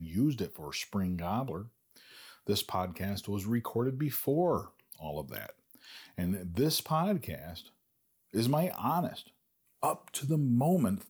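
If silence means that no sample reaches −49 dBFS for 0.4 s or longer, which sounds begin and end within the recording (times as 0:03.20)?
0:08.33–0:09.29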